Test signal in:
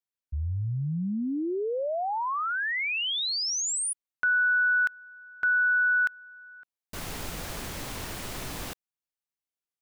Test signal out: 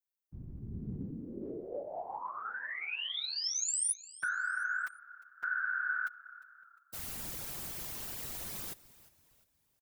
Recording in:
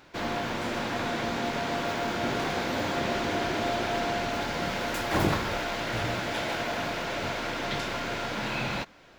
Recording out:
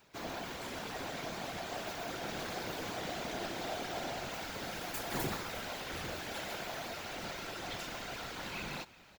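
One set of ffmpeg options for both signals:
ffmpeg -i in.wav -filter_complex "[0:a]tremolo=f=190:d=0.519,aemphasis=mode=production:type=50kf,aecho=1:1:5.9:0.33,asplit=2[link_01][link_02];[link_02]asplit=3[link_03][link_04][link_05];[link_03]adelay=353,afreqshift=-33,volume=-19.5dB[link_06];[link_04]adelay=706,afreqshift=-66,volume=-27dB[link_07];[link_05]adelay=1059,afreqshift=-99,volume=-34.6dB[link_08];[link_06][link_07][link_08]amix=inputs=3:normalize=0[link_09];[link_01][link_09]amix=inputs=2:normalize=0,afftfilt=real='hypot(re,im)*cos(2*PI*random(0))':imag='hypot(re,im)*sin(2*PI*random(1))':win_size=512:overlap=0.75,volume=-4dB" out.wav

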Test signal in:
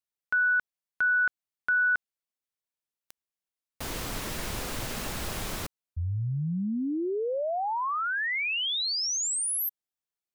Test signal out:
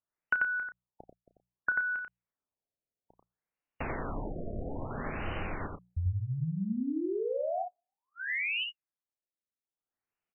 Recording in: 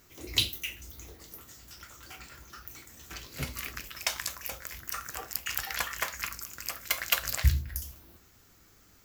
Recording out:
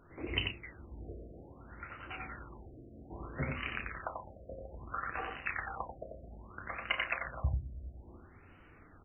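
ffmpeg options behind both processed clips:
ffmpeg -i in.wav -filter_complex "[0:a]bandreject=frequency=60:width_type=h:width=6,bandreject=frequency=120:width_type=h:width=6,bandreject=frequency=180:width_type=h:width=6,acompressor=threshold=-37dB:ratio=8:attack=82:release=807:knee=6:detection=peak,asplit=2[link_01][link_02];[link_02]adelay=32,volume=-10dB[link_03];[link_01][link_03]amix=inputs=2:normalize=0,aecho=1:1:90:0.668,afftfilt=real='re*lt(b*sr/1024,690*pow(3100/690,0.5+0.5*sin(2*PI*0.61*pts/sr)))':imag='im*lt(b*sr/1024,690*pow(3100/690,0.5+0.5*sin(2*PI*0.61*pts/sr)))':win_size=1024:overlap=0.75,volume=3.5dB" out.wav

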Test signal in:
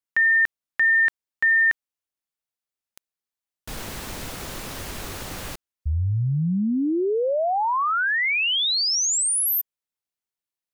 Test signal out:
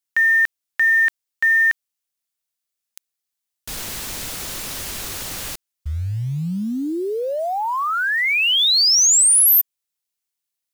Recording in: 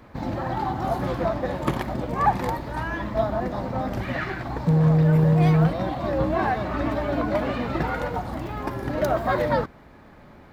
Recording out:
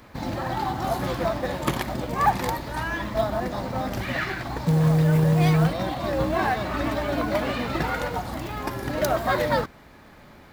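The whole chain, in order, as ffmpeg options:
ffmpeg -i in.wav -af "highshelf=frequency=2400:gain=11,acrusher=bits=7:mode=log:mix=0:aa=0.000001,volume=-1.5dB" out.wav

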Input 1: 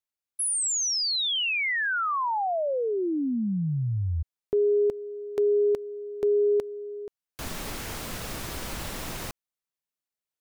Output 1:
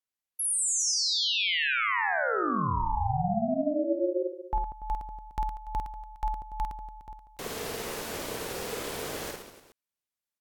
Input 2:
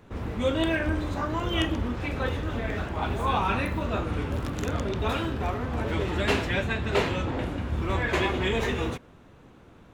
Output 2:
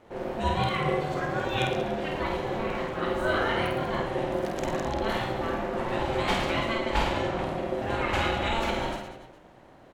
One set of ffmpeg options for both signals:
ffmpeg -i in.wav -af "aecho=1:1:50|112.5|190.6|288.3|410.4:0.631|0.398|0.251|0.158|0.1,aeval=exprs='val(0)*sin(2*PI*450*n/s)':channel_layout=same" out.wav

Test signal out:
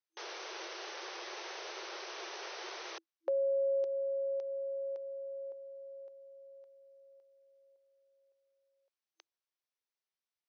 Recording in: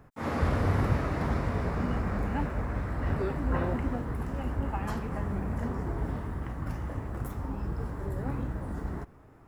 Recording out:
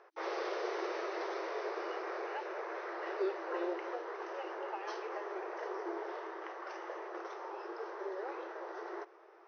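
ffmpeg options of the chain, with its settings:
ffmpeg -i in.wav -filter_complex "[0:a]afftfilt=real='re*between(b*sr/4096,330,6300)':imag='im*between(b*sr/4096,330,6300)':win_size=4096:overlap=0.75,acrossover=split=450|3000[link_01][link_02][link_03];[link_02]acompressor=threshold=-41dB:ratio=6[link_04];[link_01][link_04][link_03]amix=inputs=3:normalize=0,volume=1dB" out.wav

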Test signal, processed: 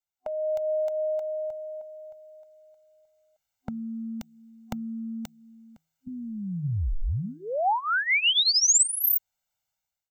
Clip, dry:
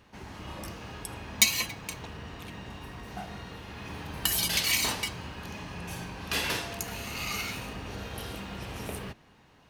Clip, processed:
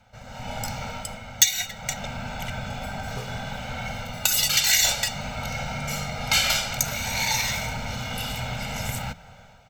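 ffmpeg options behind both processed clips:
ffmpeg -i in.wav -filter_complex "[0:a]acrossover=split=2700[link_01][link_02];[link_01]acompressor=threshold=-39dB:ratio=6[link_03];[link_03][link_02]amix=inputs=2:normalize=0,afreqshift=-320,equalizer=frequency=230:width_type=o:width=0.79:gain=-5,aecho=1:1:1.4:0.76,bandreject=frequency=160.8:width_type=h:width=4,bandreject=frequency=321.6:width_type=h:width=4,dynaudnorm=framelen=120:gausssize=7:maxgain=11dB,superequalizer=6b=0.398:9b=1.58:15b=1.41:16b=0.398,volume=-1dB" out.wav

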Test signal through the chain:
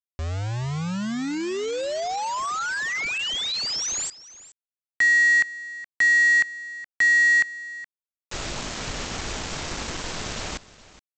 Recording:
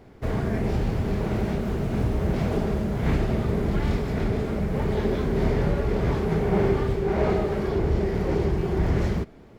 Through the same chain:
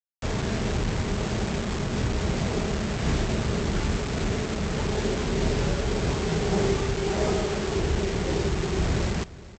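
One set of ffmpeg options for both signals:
ffmpeg -i in.wav -af "aresample=16000,acrusher=bits=4:mix=0:aa=0.000001,aresample=44100,aecho=1:1:420:0.119,volume=-2.5dB" out.wav

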